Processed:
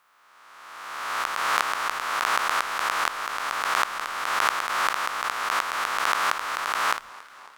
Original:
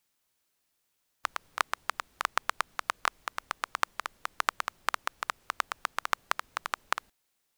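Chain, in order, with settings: reverse spectral sustain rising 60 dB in 1.83 s; modulated delay 274 ms, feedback 71%, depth 161 cents, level -21.5 dB

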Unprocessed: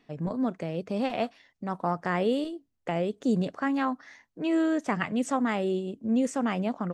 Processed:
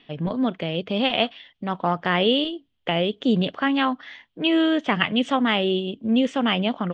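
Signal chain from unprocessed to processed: resonant low-pass 3.2 kHz, resonance Q 7.3; trim +5 dB

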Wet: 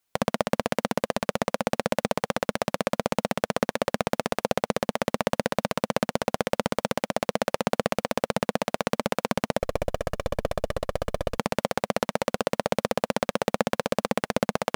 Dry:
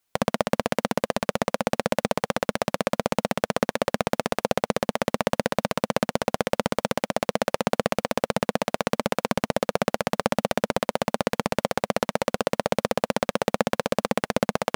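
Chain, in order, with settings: 9.59–11.38 s: comb filter that takes the minimum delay 1.7 ms; trim -1.5 dB

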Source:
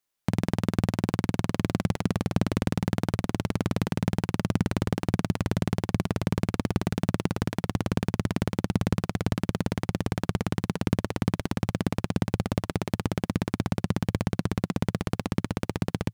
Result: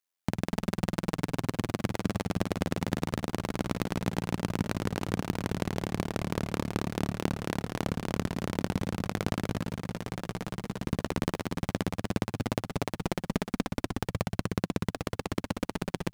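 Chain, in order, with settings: bass shelf 240 Hz -9 dB; waveshaping leveller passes 1; AM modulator 87 Hz, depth 60%; on a send: delay 246 ms -4.5 dB

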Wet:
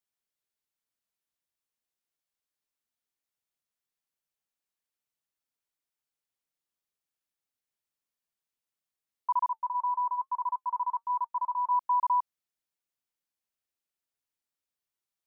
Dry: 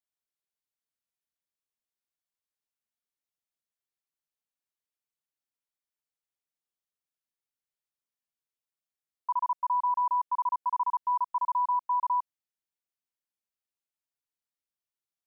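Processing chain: 9.49–11.71 s: flange 1.1 Hz, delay 3.6 ms, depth 1.8 ms, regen -67%; trim +1.5 dB

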